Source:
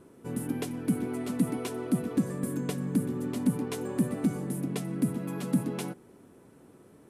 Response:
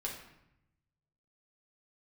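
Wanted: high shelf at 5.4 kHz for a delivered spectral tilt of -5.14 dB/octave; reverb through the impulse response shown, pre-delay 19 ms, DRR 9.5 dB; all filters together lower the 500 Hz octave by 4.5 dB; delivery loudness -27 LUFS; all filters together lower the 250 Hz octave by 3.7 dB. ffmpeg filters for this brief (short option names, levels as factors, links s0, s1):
-filter_complex "[0:a]equalizer=f=250:t=o:g=-3.5,equalizer=f=500:t=o:g=-4.5,highshelf=f=5400:g=7,asplit=2[s0][s1];[1:a]atrim=start_sample=2205,adelay=19[s2];[s1][s2]afir=irnorm=-1:irlink=0,volume=0.299[s3];[s0][s3]amix=inputs=2:normalize=0,volume=2.11"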